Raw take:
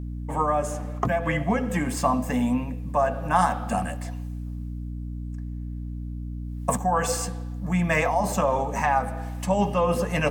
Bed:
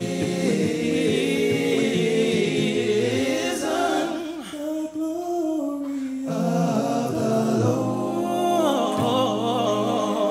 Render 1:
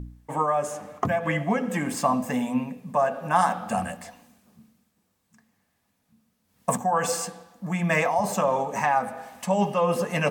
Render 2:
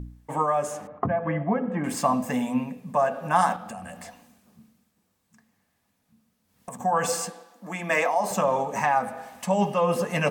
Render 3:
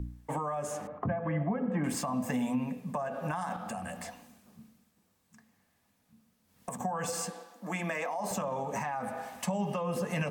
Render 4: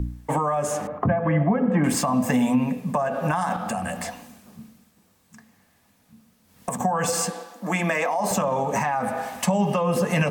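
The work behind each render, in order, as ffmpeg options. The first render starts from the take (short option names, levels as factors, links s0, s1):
-af "bandreject=f=60:t=h:w=4,bandreject=f=120:t=h:w=4,bandreject=f=180:t=h:w=4,bandreject=f=240:t=h:w=4,bandreject=f=300:t=h:w=4"
-filter_complex "[0:a]asettb=1/sr,asplit=3[s0][s1][s2];[s0]atrim=end=0.874[s3];[s1]atrim=start=0.87:end=1.84,asetpts=PTS-STARTPTS,afade=t=in:d=0.004:c=qsin,afade=t=out:st=0.966:d=0.004:c=qsin,lowpass=1300[s4];[s2]atrim=start=1.836[s5];[s3][s4]acrossfade=d=0.004:c1=hsin:c2=qsin[s6];[s6][s5]acrossfade=d=0.004:c1=qsin:c2=hsin,asettb=1/sr,asplit=3[s7][s8][s9];[s7]atrim=end=3.564[s10];[s8]atrim=start=3.56:end=6.8,asetpts=PTS-STARTPTS,afade=t=in:d=0.004:c=qsin,afade=t=out:st=3.236:d=0.004:c=qsin,acompressor=threshold=0.0178:ratio=6:attack=3.2:release=140:knee=1:detection=peak[s11];[s9]atrim=start=6.796[s12];[s10][s11]acrossfade=d=0.004:c1=hsin:c2=qsin[s13];[s13][s12]acrossfade=d=0.004:c1=qsin:c2=hsin,asettb=1/sr,asplit=3[s14][s15][s16];[s14]atrim=end=7.304[s17];[s15]atrim=start=7.3:end=8.31,asetpts=PTS-STARTPTS,afade=t=in:d=0.004:c=qsin,afade=t=out:st=1.006:d=0.004:c=qsin,highpass=f=240:w=0.5412,highpass=f=240:w=1.3066[s18];[s16]atrim=start=8.306[s19];[s17][s18]acrossfade=d=0.004:c1=hsin:c2=qsin[s20];[s20][s19]acrossfade=d=0.004:c1=qsin:c2=hsin"
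-filter_complex "[0:a]alimiter=limit=0.106:level=0:latency=1:release=61,acrossover=split=200[s0][s1];[s1]acompressor=threshold=0.0251:ratio=5[s2];[s0][s2]amix=inputs=2:normalize=0"
-af "volume=3.35"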